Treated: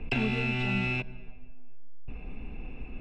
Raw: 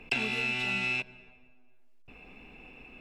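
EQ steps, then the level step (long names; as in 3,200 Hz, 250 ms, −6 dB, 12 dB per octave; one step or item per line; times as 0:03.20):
RIAA equalisation playback
+1.5 dB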